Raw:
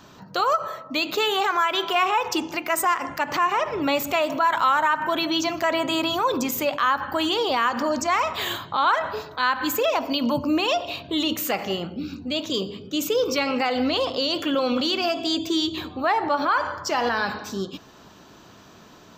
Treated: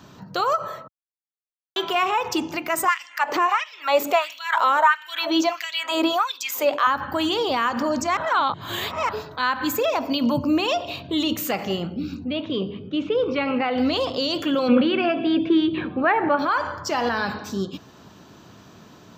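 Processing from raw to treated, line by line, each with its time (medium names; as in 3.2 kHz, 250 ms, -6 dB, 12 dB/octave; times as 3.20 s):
0.88–1.76 s: mute
2.88–6.87 s: LFO high-pass sine 1.5 Hz 360–3500 Hz
8.17–9.09 s: reverse
9.70–10.10 s: band-stop 3 kHz
12.24–13.78 s: low-pass 3.1 kHz 24 dB/octave
14.68–16.39 s: cabinet simulation 110–2900 Hz, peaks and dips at 140 Hz +7 dB, 220 Hz +8 dB, 340 Hz +4 dB, 510 Hz +7 dB, 1.6 kHz +9 dB, 2.4 kHz +6 dB
whole clip: high-pass 95 Hz; bass shelf 180 Hz +11 dB; trim -1 dB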